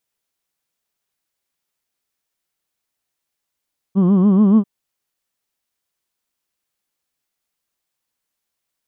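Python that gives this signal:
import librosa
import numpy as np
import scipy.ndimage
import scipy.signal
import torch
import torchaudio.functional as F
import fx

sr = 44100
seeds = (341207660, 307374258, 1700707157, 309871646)

y = fx.formant_vowel(sr, seeds[0], length_s=0.69, hz=183.0, glide_st=2.5, vibrato_hz=7.0, vibrato_st=1.25, f1_hz=260.0, f2_hz=1100.0, f3_hz=3100.0)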